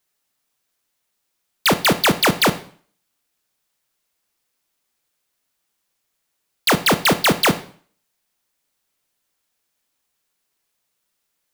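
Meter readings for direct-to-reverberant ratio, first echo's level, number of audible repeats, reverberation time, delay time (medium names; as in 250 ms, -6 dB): 12.0 dB, no echo, no echo, 0.50 s, no echo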